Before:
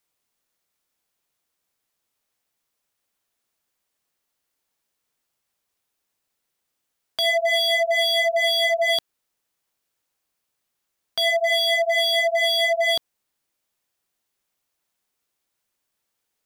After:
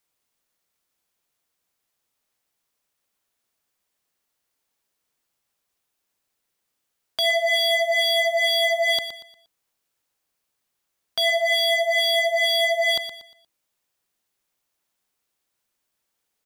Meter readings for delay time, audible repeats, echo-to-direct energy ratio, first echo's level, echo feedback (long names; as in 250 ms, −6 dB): 118 ms, 3, −10.5 dB, −11.0 dB, 34%